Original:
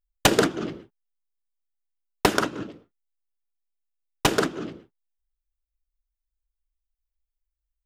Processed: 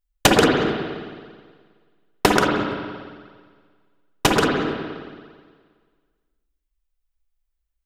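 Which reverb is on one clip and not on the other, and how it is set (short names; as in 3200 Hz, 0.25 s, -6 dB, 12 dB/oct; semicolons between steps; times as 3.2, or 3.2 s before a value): spring tank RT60 1.7 s, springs 53/57 ms, chirp 35 ms, DRR 0.5 dB; gain +3 dB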